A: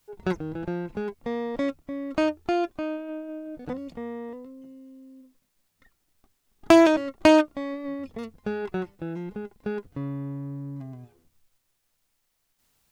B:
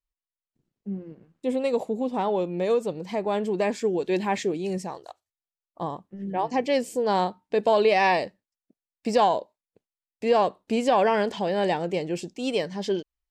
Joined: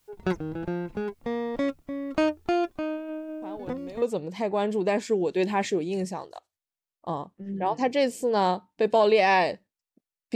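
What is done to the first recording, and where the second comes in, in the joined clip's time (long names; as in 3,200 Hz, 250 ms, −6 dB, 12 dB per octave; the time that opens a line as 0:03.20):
A
0:03.42: mix in B from 0:02.15 0.60 s −15.5 dB
0:04.02: continue with B from 0:02.75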